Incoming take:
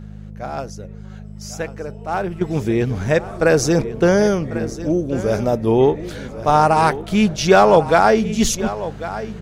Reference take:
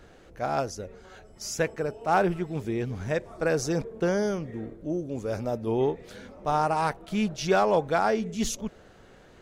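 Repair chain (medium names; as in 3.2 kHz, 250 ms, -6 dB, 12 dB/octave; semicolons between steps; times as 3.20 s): de-hum 51.7 Hz, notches 4; inverse comb 1096 ms -14 dB; trim 0 dB, from 2.41 s -11 dB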